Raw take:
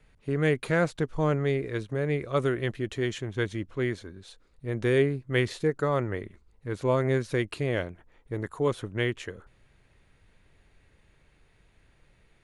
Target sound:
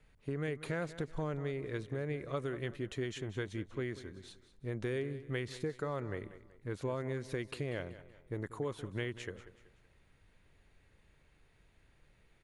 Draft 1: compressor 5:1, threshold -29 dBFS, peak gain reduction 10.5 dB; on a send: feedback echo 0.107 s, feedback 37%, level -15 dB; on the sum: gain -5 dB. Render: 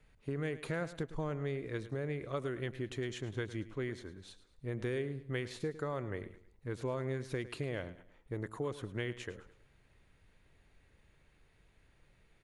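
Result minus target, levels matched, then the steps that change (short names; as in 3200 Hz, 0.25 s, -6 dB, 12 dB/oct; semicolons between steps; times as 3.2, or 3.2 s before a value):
echo 82 ms early
change: feedback echo 0.189 s, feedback 37%, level -15 dB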